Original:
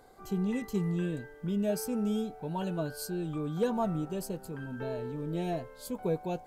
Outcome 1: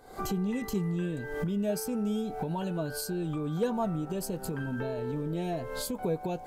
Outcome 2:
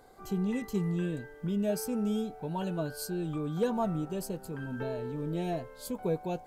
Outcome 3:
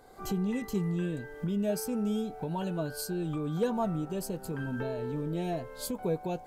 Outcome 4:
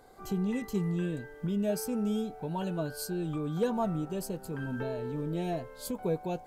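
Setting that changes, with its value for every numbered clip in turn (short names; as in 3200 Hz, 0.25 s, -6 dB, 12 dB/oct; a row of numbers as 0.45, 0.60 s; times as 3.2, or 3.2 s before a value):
recorder AGC, rising by: 87, 5.3, 32, 13 dB/s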